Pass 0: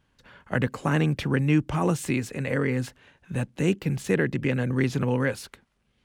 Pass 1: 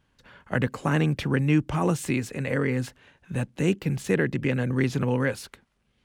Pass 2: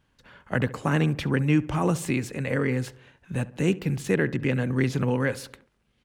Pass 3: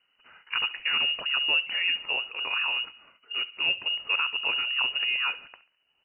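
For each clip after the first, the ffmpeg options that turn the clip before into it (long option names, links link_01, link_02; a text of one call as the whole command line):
ffmpeg -i in.wav -af anull out.wav
ffmpeg -i in.wav -filter_complex "[0:a]asplit=2[link_01][link_02];[link_02]adelay=69,lowpass=frequency=1700:poles=1,volume=-17dB,asplit=2[link_03][link_04];[link_04]adelay=69,lowpass=frequency=1700:poles=1,volume=0.55,asplit=2[link_05][link_06];[link_06]adelay=69,lowpass=frequency=1700:poles=1,volume=0.55,asplit=2[link_07][link_08];[link_08]adelay=69,lowpass=frequency=1700:poles=1,volume=0.55,asplit=2[link_09][link_10];[link_10]adelay=69,lowpass=frequency=1700:poles=1,volume=0.55[link_11];[link_01][link_03][link_05][link_07][link_09][link_11]amix=inputs=6:normalize=0" out.wav
ffmpeg -i in.wav -filter_complex "[0:a]asplit=2[link_01][link_02];[link_02]asoftclip=type=tanh:threshold=-24.5dB,volume=-8.5dB[link_03];[link_01][link_03]amix=inputs=2:normalize=0,lowpass=frequency=2600:width_type=q:width=0.5098,lowpass=frequency=2600:width_type=q:width=0.6013,lowpass=frequency=2600:width_type=q:width=0.9,lowpass=frequency=2600:width_type=q:width=2.563,afreqshift=-3000,volume=-4.5dB" -ar 12000 -c:a libmp3lame -b:a 24k out.mp3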